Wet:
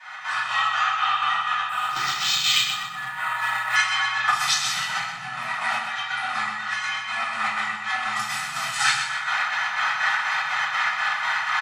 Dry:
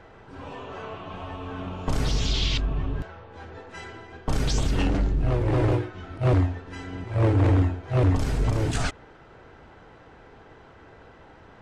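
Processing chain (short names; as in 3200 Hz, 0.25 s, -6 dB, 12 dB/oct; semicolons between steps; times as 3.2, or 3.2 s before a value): recorder AGC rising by 63 dB/s; inverse Chebyshev high-pass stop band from 460 Hz, stop band 40 dB; comb 1.7 ms, depth 65%; soft clip -15 dBFS, distortion -32 dB; frequency shift +120 Hz; chopper 4.1 Hz, depth 65%, duty 60%; feedback echo 0.126 s, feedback 37%, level -7 dB; reverb RT60 0.45 s, pre-delay 3 ms, DRR -12.5 dB; 1.69–3.76 decimation joined by straight lines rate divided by 4×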